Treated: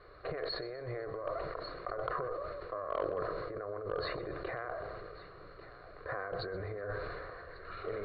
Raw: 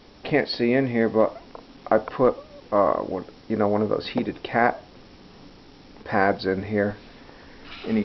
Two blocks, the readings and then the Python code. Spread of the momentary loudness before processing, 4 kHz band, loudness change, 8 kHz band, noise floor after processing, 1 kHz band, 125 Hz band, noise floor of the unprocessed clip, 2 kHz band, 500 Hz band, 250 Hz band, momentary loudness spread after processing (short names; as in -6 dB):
17 LU, -10.5 dB, -16.0 dB, n/a, -53 dBFS, -14.0 dB, -13.0 dB, -49 dBFS, -14.5 dB, -14.0 dB, -23.5 dB, 11 LU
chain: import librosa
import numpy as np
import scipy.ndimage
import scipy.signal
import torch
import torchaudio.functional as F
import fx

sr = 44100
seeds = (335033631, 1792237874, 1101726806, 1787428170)

p1 = fx.diode_clip(x, sr, knee_db=-17.5)
p2 = fx.over_compress(p1, sr, threshold_db=-29.0, ratio=-1.0)
p3 = fx.peak_eq(p2, sr, hz=240.0, db=-13.0, octaves=0.36)
p4 = fx.notch(p3, sr, hz=2600.0, q=15.0)
p5 = p4 + fx.echo_split(p4, sr, split_hz=580.0, low_ms=190, high_ms=125, feedback_pct=52, wet_db=-15.5, dry=0)
p6 = fx.dynamic_eq(p5, sr, hz=2600.0, q=0.93, threshold_db=-47.0, ratio=4.0, max_db=-5)
p7 = fx.fixed_phaser(p6, sr, hz=870.0, stages=6)
p8 = p7 + 10.0 ** (-15.5 / 20.0) * np.pad(p7, (int(1144 * sr / 1000.0), 0))[:len(p7)]
p9 = np.clip(p8, -10.0 ** (-21.0 / 20.0), 10.0 ** (-21.0 / 20.0))
p10 = scipy.signal.sosfilt(scipy.signal.cheby1(6, 9, 4400.0, 'lowpass', fs=sr, output='sos'), p9)
y = fx.sustainer(p10, sr, db_per_s=23.0)